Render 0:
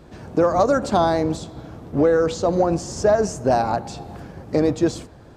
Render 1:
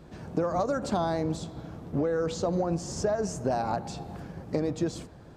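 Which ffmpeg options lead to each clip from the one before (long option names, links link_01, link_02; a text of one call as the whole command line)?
ffmpeg -i in.wav -af "equalizer=frequency=170:width=3.7:gain=5.5,acompressor=threshold=-19dB:ratio=6,volume=-5dB" out.wav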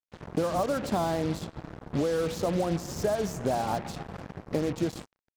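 ffmpeg -i in.wav -af "highshelf=frequency=5500:gain=-8,acrusher=bits=5:mix=0:aa=0.5" out.wav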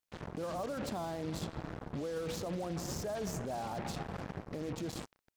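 ffmpeg -i in.wav -af "areverse,acompressor=threshold=-36dB:ratio=4,areverse,alimiter=level_in=14dB:limit=-24dB:level=0:latency=1:release=21,volume=-14dB,volume=6.5dB" out.wav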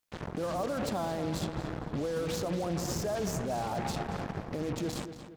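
ffmpeg -i in.wav -filter_complex "[0:a]asplit=2[link_01][link_02];[link_02]adelay=231,lowpass=frequency=4100:poles=1,volume=-10dB,asplit=2[link_03][link_04];[link_04]adelay=231,lowpass=frequency=4100:poles=1,volume=0.45,asplit=2[link_05][link_06];[link_06]adelay=231,lowpass=frequency=4100:poles=1,volume=0.45,asplit=2[link_07][link_08];[link_08]adelay=231,lowpass=frequency=4100:poles=1,volume=0.45,asplit=2[link_09][link_10];[link_10]adelay=231,lowpass=frequency=4100:poles=1,volume=0.45[link_11];[link_01][link_03][link_05][link_07][link_09][link_11]amix=inputs=6:normalize=0,volume=5dB" out.wav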